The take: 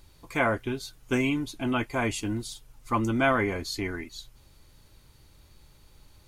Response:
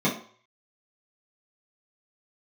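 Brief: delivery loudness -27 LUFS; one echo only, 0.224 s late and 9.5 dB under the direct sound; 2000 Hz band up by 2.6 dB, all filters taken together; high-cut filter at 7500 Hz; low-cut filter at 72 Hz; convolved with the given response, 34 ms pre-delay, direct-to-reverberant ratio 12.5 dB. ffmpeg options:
-filter_complex "[0:a]highpass=72,lowpass=7.5k,equalizer=f=2k:t=o:g=3.5,aecho=1:1:224:0.335,asplit=2[a][b];[1:a]atrim=start_sample=2205,adelay=34[c];[b][c]afir=irnorm=-1:irlink=0,volume=-26dB[d];[a][d]amix=inputs=2:normalize=0"

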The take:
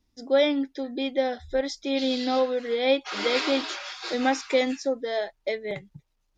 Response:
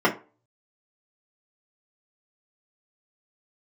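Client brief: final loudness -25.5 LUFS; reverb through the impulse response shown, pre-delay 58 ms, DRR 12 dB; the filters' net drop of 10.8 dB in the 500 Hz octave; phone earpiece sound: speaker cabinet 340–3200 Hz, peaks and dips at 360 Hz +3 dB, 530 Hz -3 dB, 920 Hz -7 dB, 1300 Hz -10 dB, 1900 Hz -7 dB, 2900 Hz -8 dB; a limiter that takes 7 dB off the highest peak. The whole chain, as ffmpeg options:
-filter_complex "[0:a]equalizer=f=500:t=o:g=-8,alimiter=limit=-20.5dB:level=0:latency=1,asplit=2[a][b];[1:a]atrim=start_sample=2205,adelay=58[c];[b][c]afir=irnorm=-1:irlink=0,volume=-30dB[d];[a][d]amix=inputs=2:normalize=0,highpass=340,equalizer=f=360:t=q:w=4:g=3,equalizer=f=530:t=q:w=4:g=-3,equalizer=f=920:t=q:w=4:g=-7,equalizer=f=1.3k:t=q:w=4:g=-10,equalizer=f=1.9k:t=q:w=4:g=-7,equalizer=f=2.9k:t=q:w=4:g=-8,lowpass=f=3.2k:w=0.5412,lowpass=f=3.2k:w=1.3066,volume=11.5dB"

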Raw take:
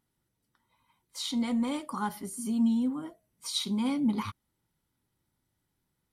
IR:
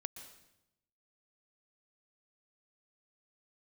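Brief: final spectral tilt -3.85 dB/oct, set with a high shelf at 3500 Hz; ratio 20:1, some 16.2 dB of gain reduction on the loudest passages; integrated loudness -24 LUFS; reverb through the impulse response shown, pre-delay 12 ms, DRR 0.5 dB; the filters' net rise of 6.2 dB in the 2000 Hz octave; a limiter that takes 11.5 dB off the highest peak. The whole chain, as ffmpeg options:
-filter_complex "[0:a]equalizer=f=2k:t=o:g=6,highshelf=f=3.5k:g=6,acompressor=threshold=-38dB:ratio=20,alimiter=level_in=13dB:limit=-24dB:level=0:latency=1,volume=-13dB,asplit=2[a][b];[1:a]atrim=start_sample=2205,adelay=12[c];[b][c]afir=irnorm=-1:irlink=0,volume=2dB[d];[a][d]amix=inputs=2:normalize=0,volume=18dB"

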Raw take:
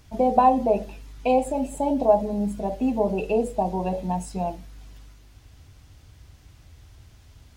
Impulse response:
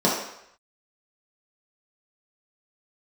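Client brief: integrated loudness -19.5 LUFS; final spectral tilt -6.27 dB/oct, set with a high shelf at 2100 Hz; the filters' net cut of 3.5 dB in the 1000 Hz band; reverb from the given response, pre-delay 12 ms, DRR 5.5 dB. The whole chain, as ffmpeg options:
-filter_complex "[0:a]equalizer=f=1k:t=o:g=-6,highshelf=f=2.1k:g=4.5,asplit=2[a][b];[1:a]atrim=start_sample=2205,adelay=12[c];[b][c]afir=irnorm=-1:irlink=0,volume=-23dB[d];[a][d]amix=inputs=2:normalize=0,volume=2.5dB"

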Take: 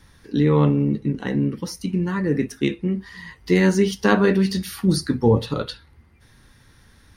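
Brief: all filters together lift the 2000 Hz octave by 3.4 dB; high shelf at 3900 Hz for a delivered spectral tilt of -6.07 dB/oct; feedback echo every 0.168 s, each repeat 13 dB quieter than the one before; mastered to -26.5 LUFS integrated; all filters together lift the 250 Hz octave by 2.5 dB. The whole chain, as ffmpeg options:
-af "equalizer=f=250:t=o:g=3.5,equalizer=f=2k:t=o:g=3,highshelf=f=3.9k:g=5,aecho=1:1:168|336|504:0.224|0.0493|0.0108,volume=-7.5dB"

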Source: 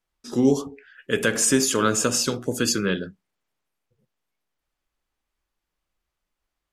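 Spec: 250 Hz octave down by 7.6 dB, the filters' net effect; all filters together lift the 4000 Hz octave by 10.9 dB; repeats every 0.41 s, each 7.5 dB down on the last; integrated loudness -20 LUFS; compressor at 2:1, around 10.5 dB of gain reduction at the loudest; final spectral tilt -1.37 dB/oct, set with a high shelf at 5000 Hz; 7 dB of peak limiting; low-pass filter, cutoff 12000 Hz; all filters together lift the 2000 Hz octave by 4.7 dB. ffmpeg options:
-af "lowpass=12k,equalizer=f=250:t=o:g=-9,equalizer=f=2k:t=o:g=3.5,equalizer=f=4k:t=o:g=9,highshelf=f=5k:g=8.5,acompressor=threshold=-30dB:ratio=2,alimiter=limit=-17dB:level=0:latency=1,aecho=1:1:410|820|1230|1640|2050:0.422|0.177|0.0744|0.0312|0.0131,volume=8.5dB"

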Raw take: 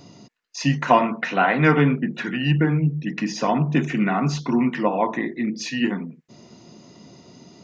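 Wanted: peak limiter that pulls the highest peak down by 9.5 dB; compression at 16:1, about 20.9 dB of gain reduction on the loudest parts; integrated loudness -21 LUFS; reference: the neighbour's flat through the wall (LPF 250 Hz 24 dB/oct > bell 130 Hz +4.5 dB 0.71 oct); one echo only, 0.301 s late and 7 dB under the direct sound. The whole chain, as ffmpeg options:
-af "acompressor=threshold=-31dB:ratio=16,alimiter=level_in=4.5dB:limit=-24dB:level=0:latency=1,volume=-4.5dB,lowpass=f=250:w=0.5412,lowpass=f=250:w=1.3066,equalizer=f=130:t=o:w=0.71:g=4.5,aecho=1:1:301:0.447,volume=18dB"

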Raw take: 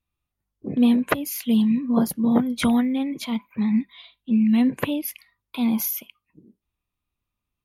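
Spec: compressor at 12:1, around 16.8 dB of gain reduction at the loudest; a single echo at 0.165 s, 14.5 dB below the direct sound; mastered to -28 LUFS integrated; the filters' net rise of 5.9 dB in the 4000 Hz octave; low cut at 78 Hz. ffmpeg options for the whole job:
-af "highpass=78,equalizer=f=4k:t=o:g=7.5,acompressor=threshold=-31dB:ratio=12,aecho=1:1:165:0.188,volume=7dB"

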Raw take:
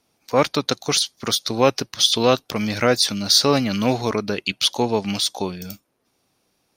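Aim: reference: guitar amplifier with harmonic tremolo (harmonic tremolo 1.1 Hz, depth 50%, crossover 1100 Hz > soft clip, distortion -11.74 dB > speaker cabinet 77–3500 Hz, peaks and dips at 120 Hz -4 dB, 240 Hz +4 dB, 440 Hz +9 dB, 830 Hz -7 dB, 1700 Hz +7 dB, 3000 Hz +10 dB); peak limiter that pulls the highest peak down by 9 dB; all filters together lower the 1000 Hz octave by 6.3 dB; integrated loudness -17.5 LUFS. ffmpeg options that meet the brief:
-filter_complex "[0:a]equalizer=f=1k:t=o:g=-6,alimiter=limit=-10.5dB:level=0:latency=1,acrossover=split=1100[a][b];[a]aeval=exprs='val(0)*(1-0.5/2+0.5/2*cos(2*PI*1.1*n/s))':c=same[c];[b]aeval=exprs='val(0)*(1-0.5/2-0.5/2*cos(2*PI*1.1*n/s))':c=same[d];[c][d]amix=inputs=2:normalize=0,asoftclip=threshold=-21dB,highpass=77,equalizer=f=120:t=q:w=4:g=-4,equalizer=f=240:t=q:w=4:g=4,equalizer=f=440:t=q:w=4:g=9,equalizer=f=830:t=q:w=4:g=-7,equalizer=f=1.7k:t=q:w=4:g=7,equalizer=f=3k:t=q:w=4:g=10,lowpass=f=3.5k:w=0.5412,lowpass=f=3.5k:w=1.3066,volume=9.5dB"

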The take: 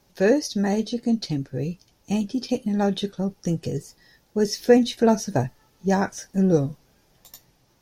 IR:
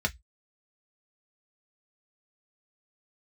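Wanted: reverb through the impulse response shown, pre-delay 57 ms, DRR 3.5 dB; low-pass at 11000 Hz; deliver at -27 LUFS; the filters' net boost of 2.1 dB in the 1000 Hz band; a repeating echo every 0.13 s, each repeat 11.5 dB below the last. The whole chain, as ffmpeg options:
-filter_complex "[0:a]lowpass=11k,equalizer=f=1k:t=o:g=3,aecho=1:1:130|260|390:0.266|0.0718|0.0194,asplit=2[a][b];[1:a]atrim=start_sample=2205,adelay=57[c];[b][c]afir=irnorm=-1:irlink=0,volume=-11.5dB[d];[a][d]amix=inputs=2:normalize=0,volume=-6dB"

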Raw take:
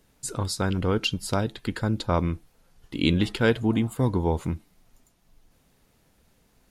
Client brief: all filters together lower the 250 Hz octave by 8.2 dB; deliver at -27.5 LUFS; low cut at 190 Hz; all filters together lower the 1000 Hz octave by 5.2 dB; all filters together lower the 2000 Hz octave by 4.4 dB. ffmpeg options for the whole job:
-af "highpass=190,equalizer=f=250:t=o:g=-8.5,equalizer=f=1k:t=o:g=-5,equalizer=f=2k:t=o:g=-4.5,volume=4.5dB"

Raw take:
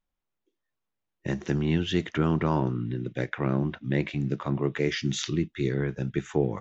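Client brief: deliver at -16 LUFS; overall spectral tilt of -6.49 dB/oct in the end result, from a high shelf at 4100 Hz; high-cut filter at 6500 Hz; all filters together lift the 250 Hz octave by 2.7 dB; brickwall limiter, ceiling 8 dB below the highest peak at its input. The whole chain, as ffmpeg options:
-af "lowpass=6.5k,equalizer=f=250:t=o:g=4,highshelf=f=4.1k:g=-5.5,volume=14dB,alimiter=limit=-4dB:level=0:latency=1"

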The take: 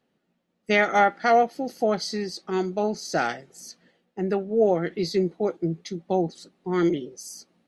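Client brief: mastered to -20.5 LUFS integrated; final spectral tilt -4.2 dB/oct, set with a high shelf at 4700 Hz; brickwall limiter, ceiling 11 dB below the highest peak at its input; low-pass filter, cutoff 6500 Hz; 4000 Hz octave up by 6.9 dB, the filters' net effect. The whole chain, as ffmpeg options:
-af "lowpass=6.5k,equalizer=f=4k:t=o:g=5,highshelf=f=4.7k:g=8,volume=8dB,alimiter=limit=-9dB:level=0:latency=1"

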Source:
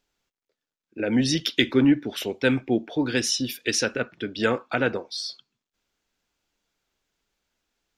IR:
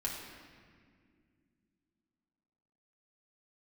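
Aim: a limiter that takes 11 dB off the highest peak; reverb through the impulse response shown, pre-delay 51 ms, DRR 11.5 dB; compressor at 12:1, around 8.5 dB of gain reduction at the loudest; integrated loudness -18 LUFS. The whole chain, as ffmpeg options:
-filter_complex "[0:a]acompressor=threshold=-22dB:ratio=12,alimiter=limit=-18dB:level=0:latency=1,asplit=2[a][b];[1:a]atrim=start_sample=2205,adelay=51[c];[b][c]afir=irnorm=-1:irlink=0,volume=-14dB[d];[a][d]amix=inputs=2:normalize=0,volume=11.5dB"

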